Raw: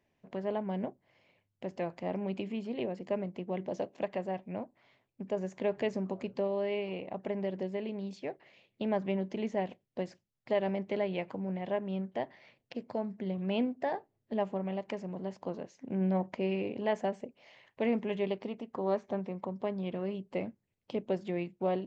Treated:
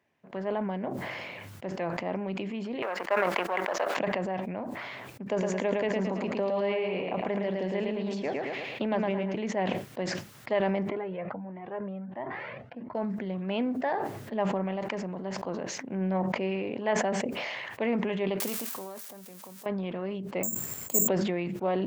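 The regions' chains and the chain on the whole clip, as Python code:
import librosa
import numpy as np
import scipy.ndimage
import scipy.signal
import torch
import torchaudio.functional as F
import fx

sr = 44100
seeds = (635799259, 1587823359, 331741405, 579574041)

y = fx.chain(x, sr, fx.law_mismatch(coded='A'),
    fx.highpass(hz=500.0, slope=12),
    fx.peak_eq(hz=1400.0, db=11.5, octaves=2.4), at=(2.82, 3.97))
y = fx.chain(y, sr, fx.echo_feedback(ms=110, feedback_pct=31, wet_db=-3.5),
    fx.band_squash(depth_pct=70), at=(5.26, 9.35))
y = fx.chain(y, sr, fx.lowpass(hz=1600.0, slope=12),
    fx.comb_cascade(direction='rising', hz=1.5), at=(10.89, 12.95))
y = fx.chain(y, sr, fx.crossing_spikes(level_db=-32.5),
    fx.high_shelf(hz=4900.0, db=11.5),
    fx.level_steps(step_db=24), at=(18.4, 19.66))
y = fx.chain(y, sr, fx.peak_eq(hz=3300.0, db=-10.5, octaves=1.5),
    fx.resample_bad(factor=6, down='none', up='zero_stuff'), at=(20.43, 21.08))
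y = scipy.signal.sosfilt(scipy.signal.butter(2, 99.0, 'highpass', fs=sr, output='sos'), y)
y = fx.peak_eq(y, sr, hz=1400.0, db=7.0, octaves=1.5)
y = fx.sustainer(y, sr, db_per_s=21.0)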